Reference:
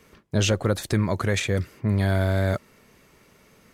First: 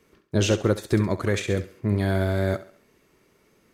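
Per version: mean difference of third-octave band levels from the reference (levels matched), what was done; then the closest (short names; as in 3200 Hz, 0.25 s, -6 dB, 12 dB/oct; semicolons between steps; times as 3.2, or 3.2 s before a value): 3.0 dB: bell 350 Hz +7.5 dB 0.61 oct; on a send: thinning echo 68 ms, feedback 42%, high-pass 200 Hz, level -10 dB; on the sum: upward expander 1.5:1, over -32 dBFS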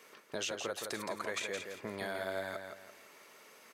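11.5 dB: HPF 490 Hz 12 dB/oct; compressor 3:1, threshold -39 dBFS, peak gain reduction 12.5 dB; on a send: feedback echo 0.168 s, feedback 34%, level -6 dB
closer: first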